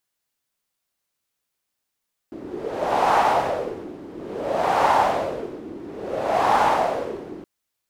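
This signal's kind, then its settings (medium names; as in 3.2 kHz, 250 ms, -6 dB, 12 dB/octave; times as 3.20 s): wind-like swept noise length 5.12 s, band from 320 Hz, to 860 Hz, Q 3.7, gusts 3, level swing 19 dB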